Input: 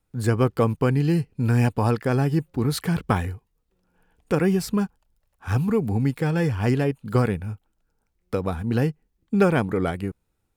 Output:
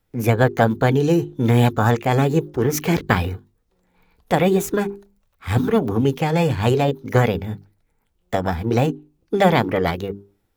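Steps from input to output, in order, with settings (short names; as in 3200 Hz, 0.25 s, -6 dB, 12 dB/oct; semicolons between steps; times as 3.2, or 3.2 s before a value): notches 50/100/150/200/250/300/350/400 Hz; formant shift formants +6 st; gain +4.5 dB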